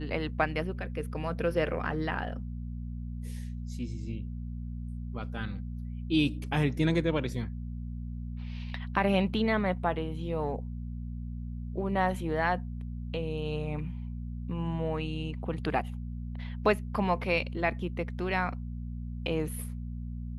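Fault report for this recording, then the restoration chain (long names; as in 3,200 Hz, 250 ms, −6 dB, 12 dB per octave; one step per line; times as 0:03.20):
mains hum 60 Hz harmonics 4 −37 dBFS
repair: hum removal 60 Hz, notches 4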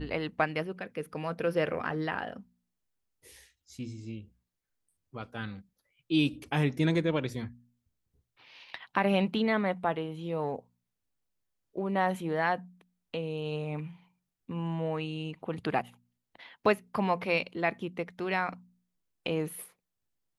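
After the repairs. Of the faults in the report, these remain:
none of them is left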